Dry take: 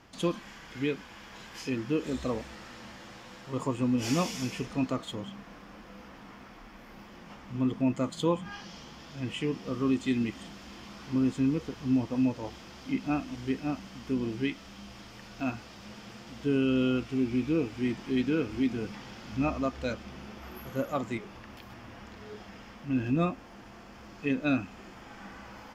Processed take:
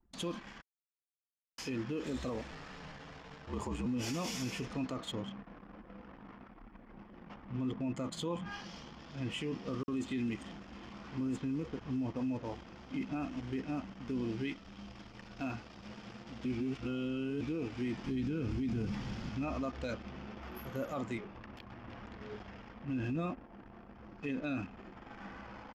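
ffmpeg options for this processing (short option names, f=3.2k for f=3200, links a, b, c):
-filter_complex "[0:a]asettb=1/sr,asplit=3[a][b][c];[a]atrim=end=2.514[d];[b]atrim=start=2.51:end=3.86,asetpts=PTS-STARTPTS,afade=t=in:d=0.004:c=qsin,afade=t=out:st=1.346:d=0.004:c=qsin,afreqshift=-52[e];[c]atrim=start=3.856[f];[d][e]acrossfade=d=0.004:c1=hsin:c2=qsin[g];[g][f]acrossfade=d=0.004:c1=qsin:c2=hsin,asettb=1/sr,asplit=3[h][i][j];[h]atrim=end=9.834[k];[i]atrim=start=9.83:end=14.08,asetpts=PTS-STARTPTS,afade=t=in:d=0.004:c=qsin,afade=t=out:st=4.246:d=0.004:c=qsin,acrossover=split=4400[l][m];[l]adelay=50[n];[n][m]amix=inputs=2:normalize=0,atrim=end_sample=187425[o];[j]atrim=start=14.076[p];[k][o]acrossfade=d=0.004:c1=hsin:c2=qsin[q];[q][p]acrossfade=d=0.004:c1=qsin:c2=hsin,asettb=1/sr,asplit=3[r][s][t];[r]atrim=end=18.044[u];[s]atrim=start=18.04:end=19.29,asetpts=PTS-STARTPTS,afade=t=in:d=0.004:c=qsin,afade=t=out:st=1.246:d=0.004:c=qsin,bass=f=250:g=12,treble=f=4k:g=2[v];[t]atrim=start=19.286[w];[u][v]acrossfade=d=0.004:c1=hsin:c2=qsin[x];[x][w]acrossfade=d=0.004:c1=qsin:c2=hsin,asplit=2[y][z];[z]afade=t=in:st=21.54:d=0.01,afade=t=out:st=22.19:d=0.01,aecho=0:1:330|660|990|1320|1650|1980|2310|2640|2970|3300|3630:0.421697|0.295188|0.206631|0.144642|0.101249|0.0708745|0.0496122|0.0347285|0.02431|0.017017|0.0119119[aa];[y][aa]amix=inputs=2:normalize=0,asplit=5[ab][ac][ad][ae][af];[ab]atrim=end=0.62,asetpts=PTS-STARTPTS,afade=t=out:st=0.616:d=0.004:c=hsin[ag];[ac]atrim=start=0.62:end=1.58,asetpts=PTS-STARTPTS,volume=0[ah];[ad]atrim=start=1.58:end=16.452,asetpts=PTS-STARTPTS,afade=t=in:d=0.004:c=hsin[ai];[ae]atrim=start=16.448:end=17.412,asetpts=PTS-STARTPTS,areverse[aj];[af]atrim=start=17.408[ak];[ag][ah][ai]concat=n=3:v=0:a=1[al];[al][aj]acrossfade=d=0.004:c1=hsin:c2=hsin[am];[am][ak]acrossfade=d=0.004:c1=hsin:c2=hsin,anlmdn=0.0158,alimiter=level_in=3.5dB:limit=-24dB:level=0:latency=1:release=21,volume=-3.5dB,volume=-1.5dB"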